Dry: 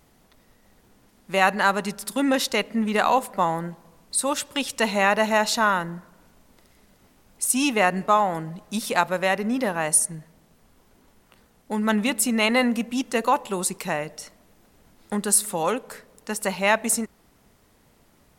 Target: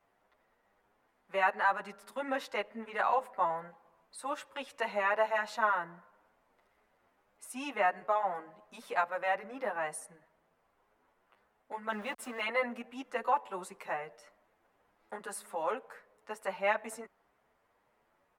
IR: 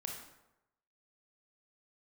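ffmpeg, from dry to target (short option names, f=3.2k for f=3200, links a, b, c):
-filter_complex "[0:a]asettb=1/sr,asplit=3[a][b][c];[a]atrim=end=11.924[d];[b]atrim=start=11.92:end=12.41,asetpts=PTS-STARTPTS,afade=t=in:d=0.004:c=qsin,afade=t=out:st=0.486:d=0.004:c=qsin,aeval=exprs='val(0)*gte(abs(val(0)),0.0316)':c=same[e];[c]atrim=start=12.406[f];[d][e]acrossfade=d=0.004:c1=hsin:c2=qsin[g];[g][f]acrossfade=d=0.004:c1=qsin:c2=hsin,acrossover=split=460 2300:gain=0.141 1 0.126[h][i][j];[h][i][j]amix=inputs=3:normalize=0,asplit=2[k][l];[l]adelay=8.5,afreqshift=1.7[m];[k][m]amix=inputs=2:normalize=1,volume=-4dB"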